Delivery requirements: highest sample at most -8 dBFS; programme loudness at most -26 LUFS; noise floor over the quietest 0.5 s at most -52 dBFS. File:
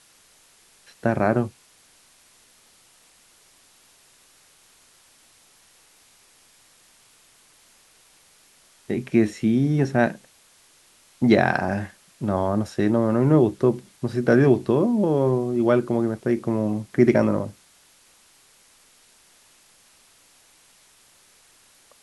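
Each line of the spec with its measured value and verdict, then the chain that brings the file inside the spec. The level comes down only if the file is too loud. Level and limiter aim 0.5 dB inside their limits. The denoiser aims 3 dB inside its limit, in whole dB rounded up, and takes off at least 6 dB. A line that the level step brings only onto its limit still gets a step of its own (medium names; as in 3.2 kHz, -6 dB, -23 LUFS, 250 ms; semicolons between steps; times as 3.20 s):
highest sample -4.0 dBFS: fail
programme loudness -21.5 LUFS: fail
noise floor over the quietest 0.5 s -56 dBFS: pass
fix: trim -5 dB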